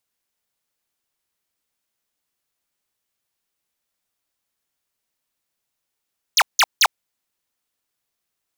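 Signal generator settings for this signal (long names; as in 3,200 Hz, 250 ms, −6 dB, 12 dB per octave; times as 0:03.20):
repeated falling chirps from 7,300 Hz, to 660 Hz, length 0.05 s square, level −13 dB, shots 3, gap 0.17 s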